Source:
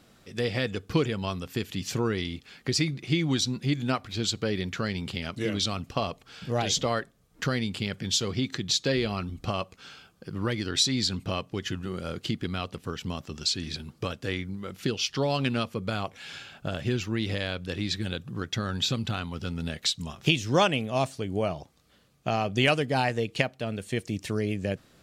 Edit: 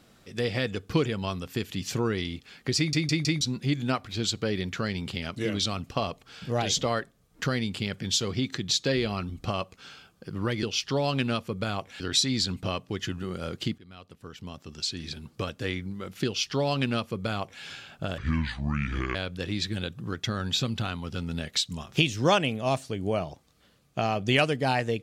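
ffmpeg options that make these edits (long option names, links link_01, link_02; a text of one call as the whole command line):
ffmpeg -i in.wav -filter_complex "[0:a]asplit=10[link_01][link_02][link_03][link_04][link_05][link_06][link_07][link_08][link_09][link_10];[link_01]atrim=end=2.932[link_11];[link_02]atrim=start=2.768:end=2.932[link_12];[link_03]atrim=start=2.768:end=2.932[link_13];[link_04]atrim=start=2.768:end=2.932[link_14];[link_05]atrim=start=3.408:end=10.632[link_15];[link_06]atrim=start=14.888:end=16.262[link_16];[link_07]atrim=start=10.628:end=12.41,asetpts=PTS-STARTPTS,afade=type=out:start_time=1.778:duration=0.004:curve=hsin:silence=0.0749894[link_17];[link_08]atrim=start=12.41:end=16.814,asetpts=PTS-STARTPTS,afade=type=in:duration=1.74:silence=0.0749894[link_18];[link_09]atrim=start=16.81:end=17.44,asetpts=PTS-STARTPTS,asetrate=28665,aresample=44100,atrim=end_sample=42743,asetpts=PTS-STARTPTS[link_19];[link_10]atrim=start=17.436[link_20];[link_11][link_12]acrossfade=duration=0.004:curve1=hsin:curve2=hsin[link_21];[link_21][link_13]acrossfade=duration=0.004:curve1=hsin:curve2=hsin[link_22];[link_22][link_14]acrossfade=duration=0.004:curve1=hsin:curve2=hsin[link_23];[link_23][link_15]acrossfade=duration=0.004:curve1=hsin:curve2=hsin[link_24];[link_24][link_16]acrossfade=duration=0.004:curve1=hsin:curve2=hsin[link_25];[link_17][link_18]concat=n=2:v=0:a=1[link_26];[link_25][link_26]acrossfade=duration=0.004:curve1=hsin:curve2=hsin[link_27];[link_27][link_19]acrossfade=duration=0.004:curve1=hsin:curve2=hsin[link_28];[link_28][link_20]acrossfade=duration=0.004:curve1=hsin:curve2=hsin" out.wav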